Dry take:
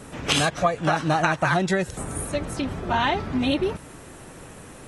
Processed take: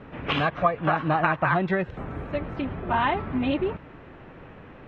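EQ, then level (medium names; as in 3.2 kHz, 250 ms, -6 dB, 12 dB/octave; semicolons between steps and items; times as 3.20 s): dynamic bell 1.1 kHz, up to +6 dB, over -42 dBFS, Q 5.2; low-pass 2.8 kHz 24 dB/octave; -2.0 dB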